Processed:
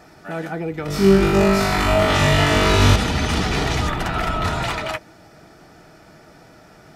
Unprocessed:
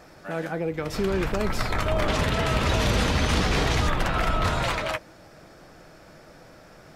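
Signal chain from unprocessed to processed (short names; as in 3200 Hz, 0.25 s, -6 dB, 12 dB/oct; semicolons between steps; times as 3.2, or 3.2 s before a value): notch comb 540 Hz; 0.86–2.96 flutter echo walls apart 3.5 m, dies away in 1.2 s; gain +3.5 dB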